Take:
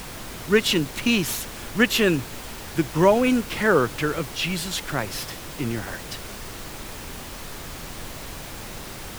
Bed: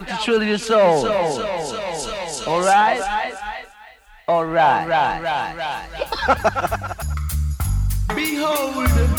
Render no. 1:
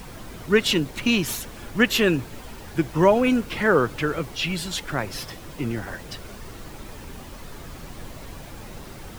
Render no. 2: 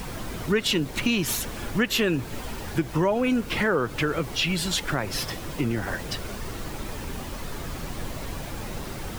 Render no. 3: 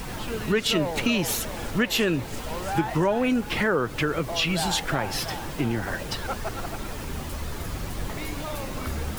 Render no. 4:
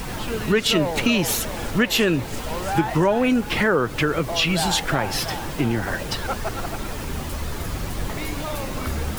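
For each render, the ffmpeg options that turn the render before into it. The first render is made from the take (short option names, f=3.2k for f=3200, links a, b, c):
-af "afftdn=nr=8:nf=-37"
-filter_complex "[0:a]asplit=2[a][b];[b]alimiter=limit=-15dB:level=0:latency=1:release=73,volume=-2dB[c];[a][c]amix=inputs=2:normalize=0,acompressor=threshold=-23dB:ratio=2.5"
-filter_complex "[1:a]volume=-16dB[a];[0:a][a]amix=inputs=2:normalize=0"
-af "volume=4dB"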